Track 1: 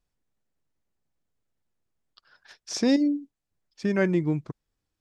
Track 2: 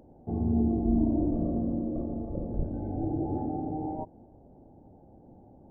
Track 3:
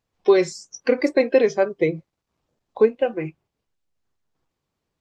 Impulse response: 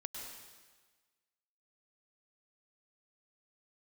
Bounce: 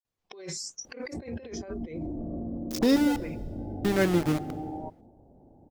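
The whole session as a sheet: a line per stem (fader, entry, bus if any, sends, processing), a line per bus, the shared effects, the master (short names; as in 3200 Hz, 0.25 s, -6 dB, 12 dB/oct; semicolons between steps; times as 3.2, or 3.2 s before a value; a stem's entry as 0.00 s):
-1.5 dB, 0.00 s, no bus, send -14 dB, sample gate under -26 dBFS
-8.0 dB, 0.85 s, bus A, no send, dry
-3.5 dB, 0.05 s, bus A, no send, gate -47 dBFS, range -13 dB; high shelf 5300 Hz +6 dB; auto duck -9 dB, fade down 0.80 s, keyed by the first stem
bus A: 0.0 dB, negative-ratio compressor -34 dBFS, ratio -1; limiter -27.5 dBFS, peak gain reduction 10.5 dB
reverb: on, RT60 1.4 s, pre-delay 95 ms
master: dry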